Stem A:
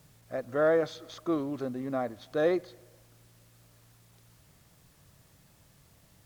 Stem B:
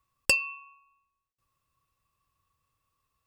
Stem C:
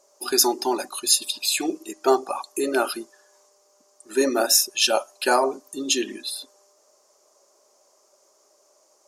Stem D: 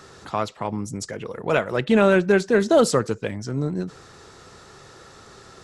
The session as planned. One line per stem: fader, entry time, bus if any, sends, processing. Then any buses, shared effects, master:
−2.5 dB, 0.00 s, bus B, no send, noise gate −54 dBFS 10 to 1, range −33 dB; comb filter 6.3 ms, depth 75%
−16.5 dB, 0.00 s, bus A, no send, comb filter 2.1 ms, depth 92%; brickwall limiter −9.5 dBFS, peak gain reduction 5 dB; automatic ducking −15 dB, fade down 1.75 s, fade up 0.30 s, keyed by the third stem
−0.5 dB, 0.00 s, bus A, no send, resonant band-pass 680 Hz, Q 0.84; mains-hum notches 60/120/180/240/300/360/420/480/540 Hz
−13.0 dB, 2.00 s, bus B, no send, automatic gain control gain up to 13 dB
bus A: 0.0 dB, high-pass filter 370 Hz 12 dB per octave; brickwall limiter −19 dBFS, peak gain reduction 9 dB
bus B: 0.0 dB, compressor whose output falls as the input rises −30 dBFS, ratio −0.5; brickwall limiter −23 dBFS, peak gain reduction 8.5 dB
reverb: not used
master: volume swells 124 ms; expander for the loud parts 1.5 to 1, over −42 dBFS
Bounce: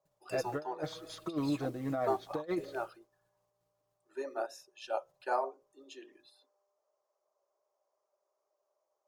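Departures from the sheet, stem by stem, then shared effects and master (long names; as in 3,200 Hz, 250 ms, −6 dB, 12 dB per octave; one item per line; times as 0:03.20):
stem C −0.5 dB → −9.5 dB
stem D: muted
master: missing volume swells 124 ms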